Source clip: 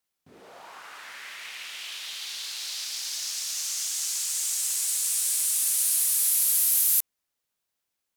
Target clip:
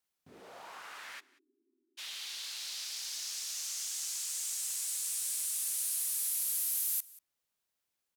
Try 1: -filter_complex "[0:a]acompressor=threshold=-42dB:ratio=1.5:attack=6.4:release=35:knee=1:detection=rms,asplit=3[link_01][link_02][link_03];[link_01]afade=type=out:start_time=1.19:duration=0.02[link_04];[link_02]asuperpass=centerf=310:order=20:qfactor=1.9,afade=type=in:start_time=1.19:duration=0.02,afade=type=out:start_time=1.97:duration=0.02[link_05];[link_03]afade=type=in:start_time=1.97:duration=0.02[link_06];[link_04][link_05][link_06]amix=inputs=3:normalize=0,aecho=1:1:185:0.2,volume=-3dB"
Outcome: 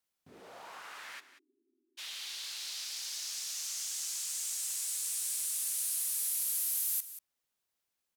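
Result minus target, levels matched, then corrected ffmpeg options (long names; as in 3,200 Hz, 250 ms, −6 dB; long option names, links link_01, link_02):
echo-to-direct +8 dB
-filter_complex "[0:a]acompressor=threshold=-42dB:ratio=1.5:attack=6.4:release=35:knee=1:detection=rms,asplit=3[link_01][link_02][link_03];[link_01]afade=type=out:start_time=1.19:duration=0.02[link_04];[link_02]asuperpass=centerf=310:order=20:qfactor=1.9,afade=type=in:start_time=1.19:duration=0.02,afade=type=out:start_time=1.97:duration=0.02[link_05];[link_03]afade=type=in:start_time=1.97:duration=0.02[link_06];[link_04][link_05][link_06]amix=inputs=3:normalize=0,aecho=1:1:185:0.0794,volume=-3dB"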